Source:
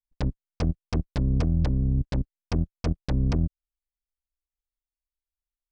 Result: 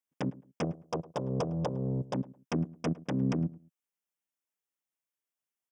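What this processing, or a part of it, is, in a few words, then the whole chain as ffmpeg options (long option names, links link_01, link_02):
PA system with an anti-feedback notch: -filter_complex "[0:a]asettb=1/sr,asplit=3[link_01][link_02][link_03];[link_01]atrim=end=0.644[link_04];[link_02]atrim=start=0.64:end=2.14,asetpts=PTS-STARTPTS,afade=type=in:duration=0.004:curve=qsin,afade=type=out:start_time=1.496:duration=0.004:curve=qsin,equalizer=frequency=250:width_type=o:width=1:gain=-11,equalizer=frequency=500:width_type=o:width=1:gain=9,equalizer=frequency=1000:width_type=o:width=1:gain=7,equalizer=frequency=2000:width_type=o:width=1:gain=-11,equalizer=frequency=4000:width_type=o:width=1:gain=4[link_05];[link_03]atrim=start=2.136[link_06];[link_04][link_05]acrossfade=duration=0.004:curve1=hsin:curve2=qsin[link_07];[link_07][link_06]acrossfade=duration=0.004:curve1=qsin:curve2=hsin,highpass=frequency=160:width=0.5412,highpass=frequency=160:width=1.3066,asuperstop=centerf=4200:order=4:qfactor=2.6,alimiter=level_in=0.5dB:limit=-24dB:level=0:latency=1:release=220,volume=-0.5dB,asplit=2[link_08][link_09];[link_09]adelay=107,lowpass=frequency=1300:poles=1,volume=-19dB,asplit=2[link_10][link_11];[link_11]adelay=107,lowpass=frequency=1300:poles=1,volume=0.26[link_12];[link_08][link_10][link_12]amix=inputs=3:normalize=0,volume=3dB"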